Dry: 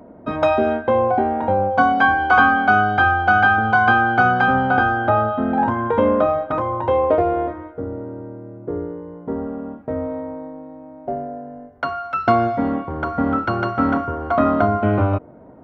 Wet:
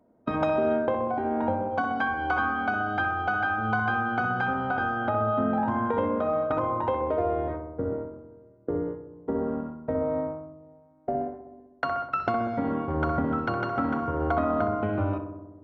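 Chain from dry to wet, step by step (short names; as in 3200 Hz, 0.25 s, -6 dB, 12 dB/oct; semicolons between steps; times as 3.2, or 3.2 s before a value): gate -28 dBFS, range -21 dB; compressor, threshold -25 dBFS, peak gain reduction 15 dB; darkening echo 64 ms, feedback 75%, low-pass 1600 Hz, level -6.5 dB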